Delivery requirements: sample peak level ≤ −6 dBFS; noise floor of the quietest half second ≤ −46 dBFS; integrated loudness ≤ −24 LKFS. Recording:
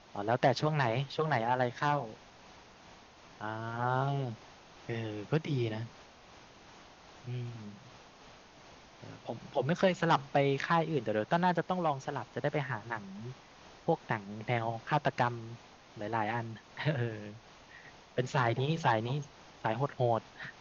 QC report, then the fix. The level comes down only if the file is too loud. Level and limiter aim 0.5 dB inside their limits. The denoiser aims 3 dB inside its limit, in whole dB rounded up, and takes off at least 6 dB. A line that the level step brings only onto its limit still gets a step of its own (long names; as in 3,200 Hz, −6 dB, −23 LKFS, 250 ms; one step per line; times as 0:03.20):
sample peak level −13.5 dBFS: in spec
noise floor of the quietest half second −56 dBFS: in spec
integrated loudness −33.0 LKFS: in spec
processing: no processing needed